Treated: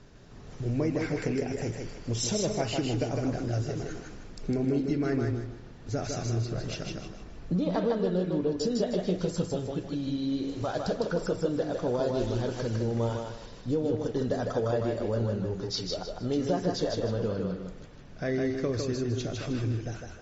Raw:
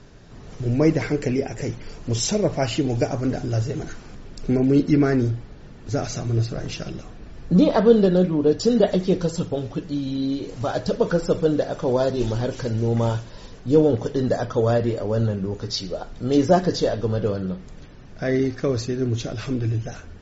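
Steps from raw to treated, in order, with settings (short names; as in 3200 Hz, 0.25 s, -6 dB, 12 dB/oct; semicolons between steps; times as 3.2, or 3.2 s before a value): compressor, threshold -19 dBFS, peak gain reduction 10.5 dB; on a send: thinning echo 0.155 s, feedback 32%, high-pass 180 Hz, level -3.5 dB; on the sum: gain -6 dB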